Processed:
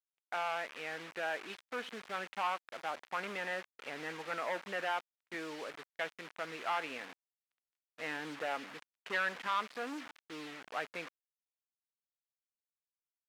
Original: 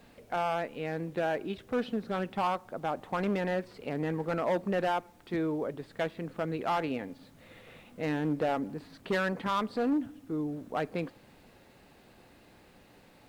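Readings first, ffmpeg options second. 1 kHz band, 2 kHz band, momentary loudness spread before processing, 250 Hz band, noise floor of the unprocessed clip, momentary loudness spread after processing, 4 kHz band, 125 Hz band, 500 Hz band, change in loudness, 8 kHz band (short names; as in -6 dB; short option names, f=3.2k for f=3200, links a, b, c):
-5.0 dB, +0.5 dB, 8 LU, -16.5 dB, -59 dBFS, 10 LU, 0.0 dB, -20.5 dB, -10.5 dB, -6.5 dB, n/a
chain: -af "acrusher=bits=6:mix=0:aa=0.000001,agate=range=-29dB:threshold=-50dB:ratio=16:detection=peak,bandpass=f=2k:t=q:w=1:csg=0,volume=1dB"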